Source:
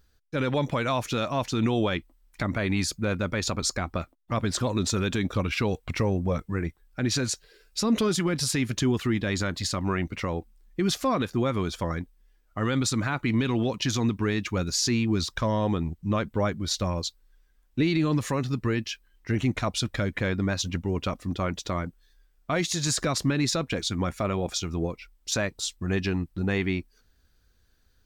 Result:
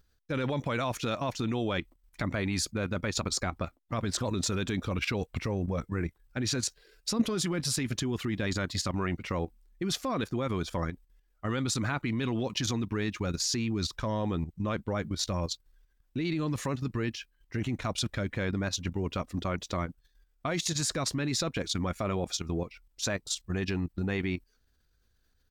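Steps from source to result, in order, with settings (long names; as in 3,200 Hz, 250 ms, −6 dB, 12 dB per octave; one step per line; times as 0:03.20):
tempo change 1.1×
output level in coarse steps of 10 dB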